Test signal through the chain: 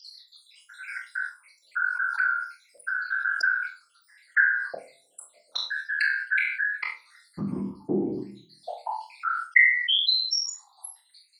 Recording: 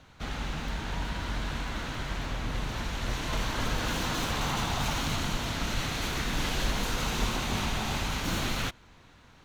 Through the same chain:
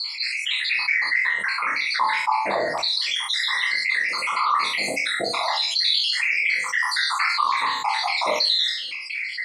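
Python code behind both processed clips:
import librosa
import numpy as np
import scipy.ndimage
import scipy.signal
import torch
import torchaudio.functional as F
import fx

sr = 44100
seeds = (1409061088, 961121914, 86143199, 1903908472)

p1 = fx.spec_dropout(x, sr, seeds[0], share_pct=79)
p2 = fx.ripple_eq(p1, sr, per_octave=0.93, db=16)
p3 = fx.rider(p2, sr, range_db=5, speed_s=0.5)
p4 = fx.rotary(p3, sr, hz=0.8)
p5 = fx.whisperise(p4, sr, seeds[1])
p6 = fx.filter_lfo_highpass(p5, sr, shape='saw_down', hz=0.36, low_hz=590.0, high_hz=4400.0, q=7.1)
p7 = fx.air_absorb(p6, sr, metres=61.0)
p8 = fx.doubler(p7, sr, ms=40.0, db=-8.0)
p9 = p8 + fx.room_flutter(p8, sr, wall_m=4.3, rt60_s=0.22, dry=0)
p10 = fx.room_shoebox(p9, sr, seeds[2], volume_m3=270.0, walls='furnished', distance_m=0.8)
p11 = fx.env_flatten(p10, sr, amount_pct=70)
y = p11 * librosa.db_to_amplitude(3.5)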